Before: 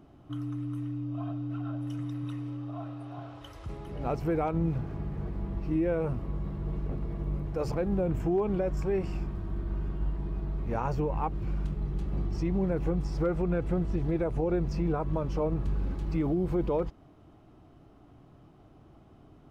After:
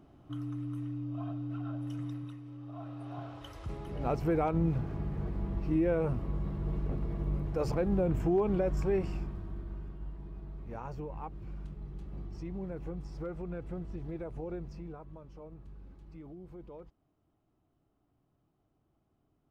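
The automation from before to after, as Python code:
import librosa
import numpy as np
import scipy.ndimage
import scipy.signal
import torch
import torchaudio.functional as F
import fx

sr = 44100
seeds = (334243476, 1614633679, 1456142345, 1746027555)

y = fx.gain(x, sr, db=fx.line((2.12, -3.0), (2.41, -11.0), (3.11, -0.5), (8.93, -0.5), (9.97, -11.0), (14.52, -11.0), (15.22, -20.0)))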